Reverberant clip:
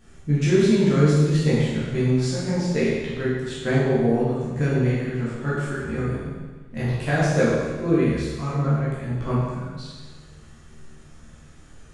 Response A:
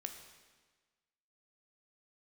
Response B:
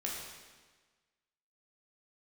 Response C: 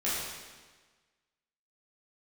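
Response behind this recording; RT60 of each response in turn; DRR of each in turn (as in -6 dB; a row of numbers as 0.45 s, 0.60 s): C; 1.4 s, 1.4 s, 1.4 s; 5.0 dB, -4.0 dB, -10.0 dB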